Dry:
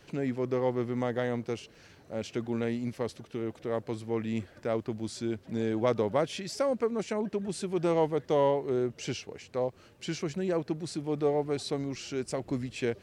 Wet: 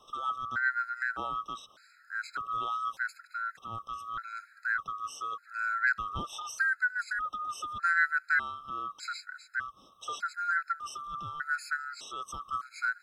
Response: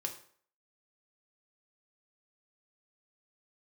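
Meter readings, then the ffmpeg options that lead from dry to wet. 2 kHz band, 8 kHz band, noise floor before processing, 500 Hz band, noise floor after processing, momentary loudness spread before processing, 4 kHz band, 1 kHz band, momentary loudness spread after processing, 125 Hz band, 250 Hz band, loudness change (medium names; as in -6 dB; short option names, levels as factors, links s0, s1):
+15.5 dB, -2.5 dB, -57 dBFS, -26.5 dB, -61 dBFS, 10 LU, -3.0 dB, +5.0 dB, 12 LU, -17.0 dB, -24.0 dB, -1.0 dB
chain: -af "afftfilt=real='real(if(lt(b,960),b+48*(1-2*mod(floor(b/48),2)),b),0)':imag='imag(if(lt(b,960),b+48*(1-2*mod(floor(b/48),2)),b),0)':win_size=2048:overlap=0.75,afftfilt=real='re*gt(sin(2*PI*0.83*pts/sr)*(1-2*mod(floor(b*sr/1024/1300),2)),0)':imag='im*gt(sin(2*PI*0.83*pts/sr)*(1-2*mod(floor(b*sr/1024/1300),2)),0)':win_size=1024:overlap=0.75"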